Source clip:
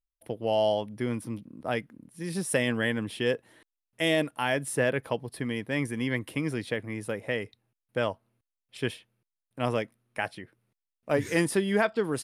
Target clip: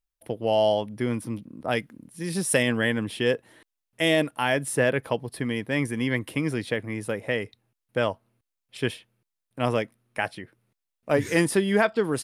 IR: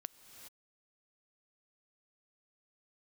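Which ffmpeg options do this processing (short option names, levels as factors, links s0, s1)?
-filter_complex "[0:a]asettb=1/sr,asplit=3[s0][s1][s2];[s0]atrim=end=1.664[s3];[s1]atrim=start=1.66:end=2.63,asetpts=PTS-STARTPTS,afade=t=in:d=0.004:c=qsin,afade=t=out:st=0.966:d=0.004:c=qsin,adynamicequalizer=threshold=0.00708:dfrequency=2600:dqfactor=0.7:tfrequency=2600:tqfactor=0.7:attack=5:release=100:ratio=0.375:range=2.5:mode=boostabove:tftype=highshelf[s4];[s2]atrim=start=2.626[s5];[s3][s4]acrossfade=d=0.004:c1=hsin:c2=qsin[s6];[s6][s5]acrossfade=d=0.004:c1=qsin:c2=hsin,volume=1.5"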